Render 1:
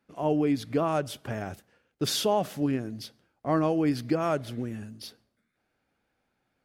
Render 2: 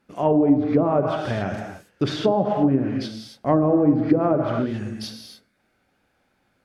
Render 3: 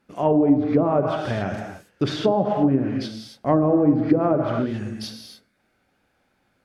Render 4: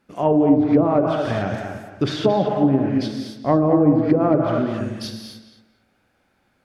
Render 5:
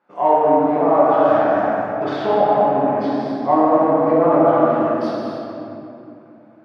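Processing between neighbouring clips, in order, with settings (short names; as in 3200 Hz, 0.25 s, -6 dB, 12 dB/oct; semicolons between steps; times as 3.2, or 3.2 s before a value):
non-linear reverb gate 0.31 s flat, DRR 3.5 dB; wow and flutter 25 cents; treble ducked by the level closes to 640 Hz, closed at -20.5 dBFS; gain +7.5 dB
nothing audible
darkening echo 0.225 s, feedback 24%, low-pass 3200 Hz, level -7 dB; gain +1.5 dB
in parallel at -6 dB: hard clip -21.5 dBFS, distortion -5 dB; on the sum: band-pass 910 Hz, Q 1.5; shoebox room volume 120 m³, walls hard, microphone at 0.91 m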